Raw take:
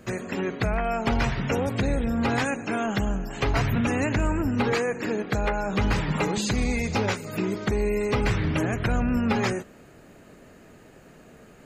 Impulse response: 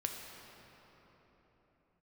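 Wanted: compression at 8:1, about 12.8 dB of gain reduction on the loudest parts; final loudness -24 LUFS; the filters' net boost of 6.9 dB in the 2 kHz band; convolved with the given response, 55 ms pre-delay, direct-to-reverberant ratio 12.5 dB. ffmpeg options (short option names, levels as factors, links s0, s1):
-filter_complex "[0:a]equalizer=f=2000:t=o:g=8.5,acompressor=threshold=0.0251:ratio=8,asplit=2[s0][s1];[1:a]atrim=start_sample=2205,adelay=55[s2];[s1][s2]afir=irnorm=-1:irlink=0,volume=0.2[s3];[s0][s3]amix=inputs=2:normalize=0,volume=3.55"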